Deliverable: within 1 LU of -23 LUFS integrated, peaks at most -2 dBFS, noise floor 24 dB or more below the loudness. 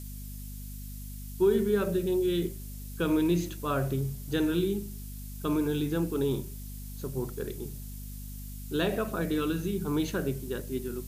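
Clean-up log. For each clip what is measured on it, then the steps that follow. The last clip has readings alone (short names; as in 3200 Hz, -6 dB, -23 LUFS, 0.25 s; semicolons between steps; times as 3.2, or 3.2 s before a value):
hum 50 Hz; harmonics up to 250 Hz; hum level -38 dBFS; noise floor -40 dBFS; noise floor target -54 dBFS; loudness -30.0 LUFS; peak -14.5 dBFS; loudness target -23.0 LUFS
-> de-hum 50 Hz, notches 5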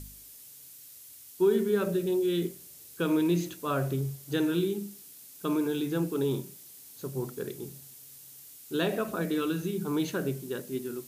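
hum none; noise floor -50 dBFS; noise floor target -54 dBFS
-> denoiser 6 dB, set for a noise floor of -50 dBFS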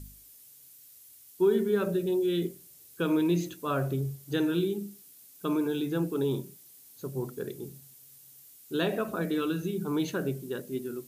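noise floor -54 dBFS; noise floor target -55 dBFS
-> denoiser 6 dB, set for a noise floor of -54 dBFS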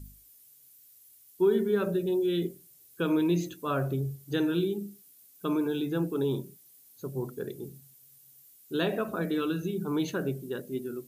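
noise floor -58 dBFS; loudness -30.5 LUFS; peak -15.0 dBFS; loudness target -23.0 LUFS
-> gain +7.5 dB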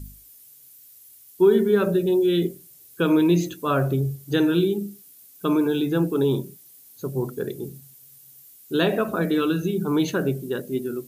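loudness -23.0 LUFS; peak -7.5 dBFS; noise floor -50 dBFS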